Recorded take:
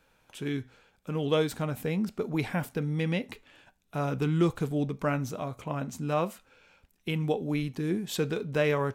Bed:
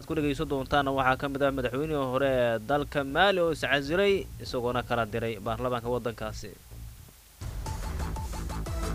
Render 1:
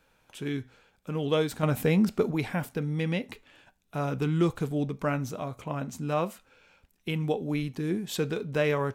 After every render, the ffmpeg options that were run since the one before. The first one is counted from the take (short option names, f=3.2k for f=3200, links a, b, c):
-filter_complex "[0:a]asplit=3[a][b][c];[a]atrim=end=1.632[d];[b]atrim=start=1.628:end=2.312,asetpts=PTS-STARTPTS,volume=6.5dB[e];[c]atrim=start=2.308[f];[d][e]acrossfade=d=0.004:c1=hsin:c2=hsin[g];[g][f]acrossfade=d=0.004:c1=hsin:c2=hsin"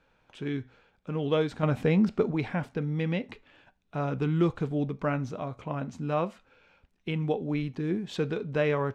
-af "lowpass=5.4k,highshelf=f=3.9k:g=-7"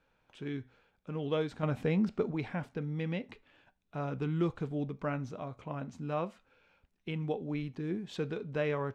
-af "volume=-6dB"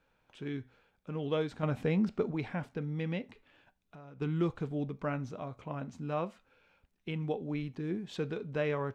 -filter_complex "[0:a]asplit=3[a][b][c];[a]afade=t=out:st=3.29:d=0.02[d];[b]acompressor=threshold=-49dB:ratio=6:attack=3.2:release=140:knee=1:detection=peak,afade=t=in:st=3.29:d=0.02,afade=t=out:st=4.2:d=0.02[e];[c]afade=t=in:st=4.2:d=0.02[f];[d][e][f]amix=inputs=3:normalize=0"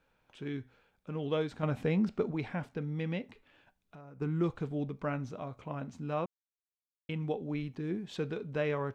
-filter_complex "[0:a]asettb=1/sr,asplit=3[a][b][c];[a]atrim=end=4.014[d];[b]atrim=start=4.01:end=4.44,asetpts=PTS-STARTPTS,afade=t=in:d=0.004:c=qsin,afade=t=out:st=0.426:d=0.004:c=qsin,equalizer=f=3.3k:t=o:w=0.73:g=-12.5[e];[c]atrim=start=4.436[f];[d][e]acrossfade=d=0.004:c1=hsin:c2=qsin[g];[g][f]acrossfade=d=0.004:c1=qsin:c2=hsin,asplit=3[h][i][j];[h]atrim=end=6.26,asetpts=PTS-STARTPTS,afade=t=out:st=6.256:d=0.004:c=hsin[k];[i]atrim=start=6.26:end=7.09,asetpts=PTS-STARTPTS,volume=0[l];[j]atrim=start=7.09,asetpts=PTS-STARTPTS,afade=t=in:d=0.004:c=hsin[m];[k][l][m]concat=n=3:v=0:a=1"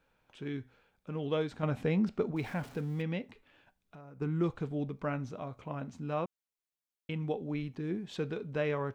-filter_complex "[0:a]asettb=1/sr,asplit=3[a][b][c];[a]atrim=end=2.364[d];[b]atrim=start=2.36:end=3.02,asetpts=PTS-STARTPTS,afade=t=in:d=0.004:c=qsin,afade=t=out:st=0.656:d=0.004:c=qsin,aeval=exprs='val(0)+0.5*0.00422*sgn(val(0))':c=same[e];[c]atrim=start=3.016[f];[d][e]acrossfade=d=0.004:c1=hsin:c2=qsin[g];[g][f]acrossfade=d=0.004:c1=qsin:c2=hsin"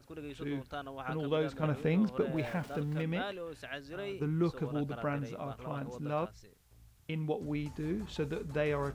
-filter_complex "[1:a]volume=-16.5dB[a];[0:a][a]amix=inputs=2:normalize=0"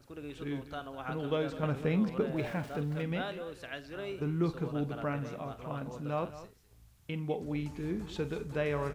-filter_complex "[0:a]asplit=2[a][b];[b]adelay=48,volume=-14dB[c];[a][c]amix=inputs=2:normalize=0,aecho=1:1:202:0.188"